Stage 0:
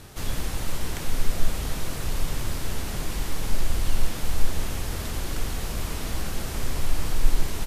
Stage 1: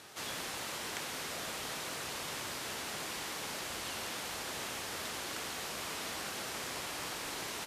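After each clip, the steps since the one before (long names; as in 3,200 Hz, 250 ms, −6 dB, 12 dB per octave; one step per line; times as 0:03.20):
meter weighting curve A
level −3 dB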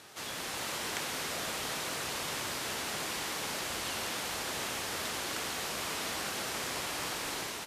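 automatic gain control gain up to 4 dB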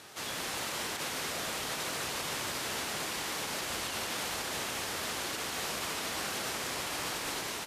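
brickwall limiter −28 dBFS, peak gain reduction 10 dB
level +2 dB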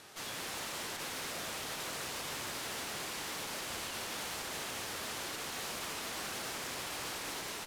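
tube saturation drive 35 dB, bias 0.65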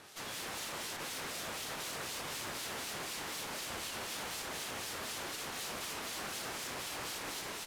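two-band tremolo in antiphase 4 Hz, depth 50%, crossover 2,400 Hz
level +1.5 dB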